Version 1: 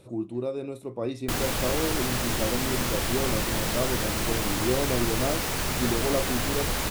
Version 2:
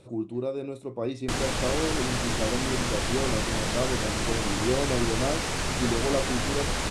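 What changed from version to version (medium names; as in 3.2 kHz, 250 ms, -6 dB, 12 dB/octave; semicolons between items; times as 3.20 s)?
master: add low-pass 9.2 kHz 24 dB/octave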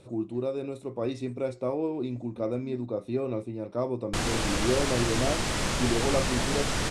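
background: entry +2.85 s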